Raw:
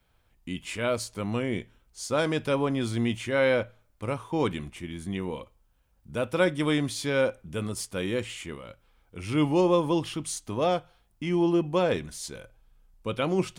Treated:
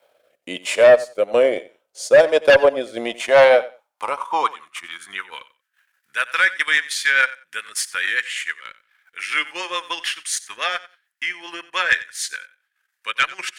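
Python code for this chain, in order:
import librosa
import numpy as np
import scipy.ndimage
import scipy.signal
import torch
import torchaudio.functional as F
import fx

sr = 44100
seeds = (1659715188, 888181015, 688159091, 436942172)

y = fx.filter_sweep_highpass(x, sr, from_hz=570.0, to_hz=1700.0, start_s=2.95, end_s=5.62, q=5.5)
y = fx.transient(y, sr, attack_db=0, sustain_db=-12)
y = fx.rotary_switch(y, sr, hz=1.1, then_hz=7.0, switch_at_s=3.36)
y = fx.cheby_harmonics(y, sr, harmonics=(5,), levels_db=(-6,), full_scale_db=-6.0)
y = fx.echo_feedback(y, sr, ms=91, feedback_pct=17, wet_db=-18)
y = F.gain(torch.from_numpy(y), 1.5).numpy()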